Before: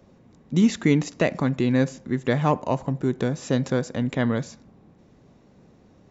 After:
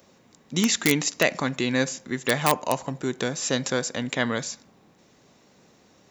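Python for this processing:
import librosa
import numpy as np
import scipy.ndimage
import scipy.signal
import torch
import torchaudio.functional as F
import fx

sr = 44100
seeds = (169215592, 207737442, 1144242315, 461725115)

p1 = (np.mod(10.0 ** (9.0 / 20.0) * x + 1.0, 2.0) - 1.0) / 10.0 ** (9.0 / 20.0)
p2 = x + (p1 * librosa.db_to_amplitude(-11.0))
y = fx.tilt_eq(p2, sr, slope=3.5)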